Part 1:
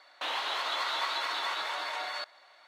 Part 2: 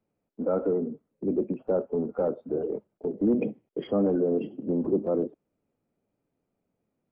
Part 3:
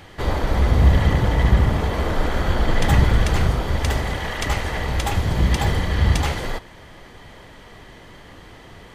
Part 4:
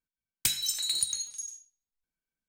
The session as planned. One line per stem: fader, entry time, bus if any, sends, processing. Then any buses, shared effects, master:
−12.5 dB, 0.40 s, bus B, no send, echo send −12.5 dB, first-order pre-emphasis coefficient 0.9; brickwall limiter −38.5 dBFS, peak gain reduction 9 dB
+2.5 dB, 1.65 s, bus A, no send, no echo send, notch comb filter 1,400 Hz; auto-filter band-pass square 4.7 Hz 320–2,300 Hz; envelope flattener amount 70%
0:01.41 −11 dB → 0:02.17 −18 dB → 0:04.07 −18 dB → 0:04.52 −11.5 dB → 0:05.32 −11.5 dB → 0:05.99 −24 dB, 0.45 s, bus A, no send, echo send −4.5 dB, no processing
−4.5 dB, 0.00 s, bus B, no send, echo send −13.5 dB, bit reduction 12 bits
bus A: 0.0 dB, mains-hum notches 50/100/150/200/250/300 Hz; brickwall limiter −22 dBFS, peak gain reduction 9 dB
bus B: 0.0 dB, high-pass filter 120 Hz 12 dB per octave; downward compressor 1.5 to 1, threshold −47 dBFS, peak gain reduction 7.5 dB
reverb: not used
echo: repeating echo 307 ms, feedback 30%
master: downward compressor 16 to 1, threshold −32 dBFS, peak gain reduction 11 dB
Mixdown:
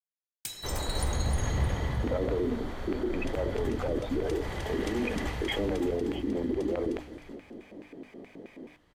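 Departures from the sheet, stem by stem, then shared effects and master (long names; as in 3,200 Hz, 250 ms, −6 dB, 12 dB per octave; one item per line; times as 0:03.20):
stem 1: entry 0.40 s → 0.75 s
master: missing downward compressor 16 to 1, threshold −32 dBFS, peak gain reduction 11 dB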